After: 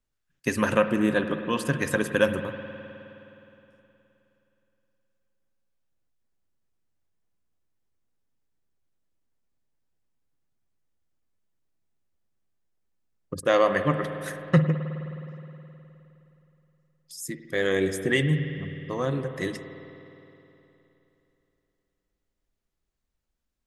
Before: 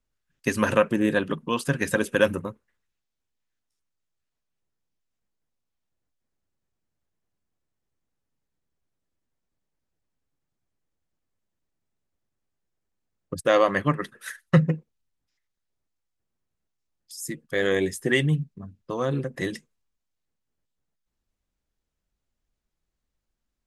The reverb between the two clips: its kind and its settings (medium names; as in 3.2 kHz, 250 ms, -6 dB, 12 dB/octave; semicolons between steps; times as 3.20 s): spring tank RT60 3.2 s, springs 52 ms, chirp 55 ms, DRR 8.5 dB; trim -1.5 dB